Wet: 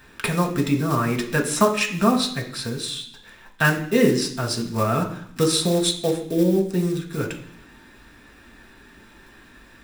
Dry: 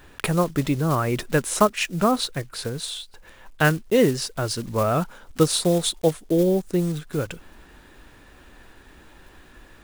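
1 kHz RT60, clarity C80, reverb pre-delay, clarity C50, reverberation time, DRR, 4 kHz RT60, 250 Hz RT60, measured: 0.70 s, 12.0 dB, 3 ms, 9.5 dB, 0.65 s, 1.0 dB, 0.85 s, 0.95 s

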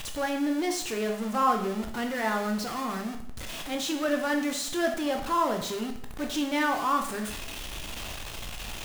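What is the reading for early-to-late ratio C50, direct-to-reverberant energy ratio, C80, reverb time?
8.5 dB, 3.5 dB, 11.5 dB, 0.65 s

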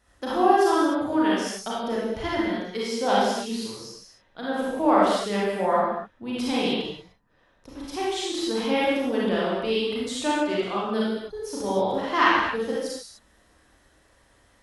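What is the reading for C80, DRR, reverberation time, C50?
0.5 dB, −7.0 dB, non-exponential decay, −3.0 dB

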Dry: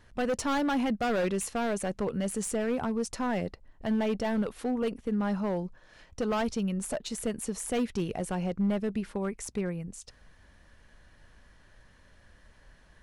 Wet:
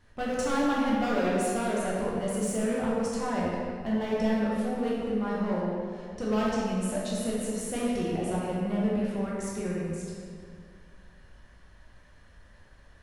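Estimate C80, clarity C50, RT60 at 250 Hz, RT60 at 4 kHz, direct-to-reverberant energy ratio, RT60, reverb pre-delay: −0.5 dB, −2.5 dB, 2.5 s, 1.4 s, −6.5 dB, 2.3 s, 11 ms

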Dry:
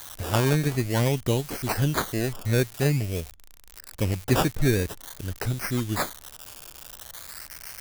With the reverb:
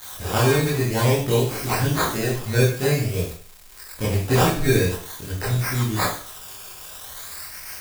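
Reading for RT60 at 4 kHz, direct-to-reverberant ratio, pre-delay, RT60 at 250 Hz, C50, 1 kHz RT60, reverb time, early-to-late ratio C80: 0.45 s, −8.5 dB, 17 ms, 0.40 s, 5.0 dB, 0.45 s, 0.45 s, 9.5 dB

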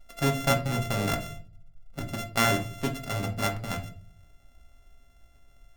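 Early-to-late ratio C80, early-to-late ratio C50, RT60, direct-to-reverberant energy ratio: 17.5 dB, 12.0 dB, 0.40 s, 2.5 dB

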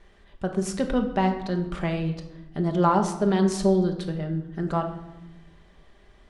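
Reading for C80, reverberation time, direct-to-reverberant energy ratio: 12.0 dB, 0.95 s, 3.5 dB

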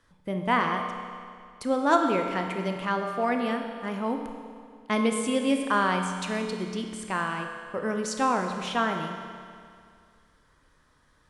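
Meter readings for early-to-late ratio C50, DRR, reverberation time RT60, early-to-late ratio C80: 5.0 dB, 4.0 dB, 2.2 s, 6.0 dB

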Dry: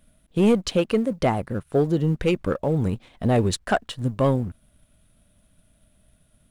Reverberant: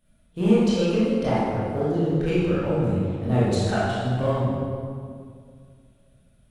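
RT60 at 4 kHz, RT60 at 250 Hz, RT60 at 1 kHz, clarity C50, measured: 1.4 s, 2.5 s, 2.0 s, −4.0 dB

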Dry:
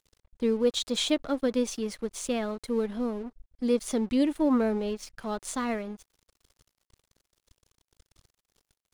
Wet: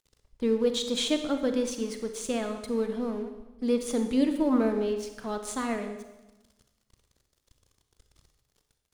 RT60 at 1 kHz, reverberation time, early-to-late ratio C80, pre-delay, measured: 1.0 s, 1.1 s, 10.0 dB, 32 ms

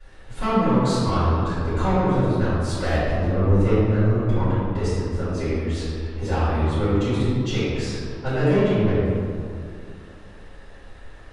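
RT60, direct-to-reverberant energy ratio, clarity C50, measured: 2.3 s, −18.0 dB, −4.0 dB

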